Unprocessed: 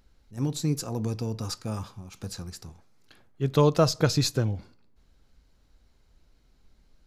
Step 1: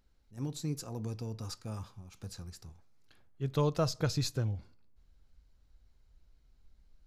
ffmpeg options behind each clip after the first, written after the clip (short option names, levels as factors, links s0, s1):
-af "asubboost=boost=2:cutoff=140,volume=0.355"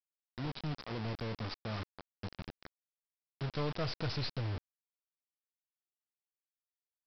-af "aeval=exprs='(tanh(56.2*val(0)+0.4)-tanh(0.4))/56.2':c=same,aresample=11025,acrusher=bits=6:mix=0:aa=0.000001,aresample=44100,volume=1.19"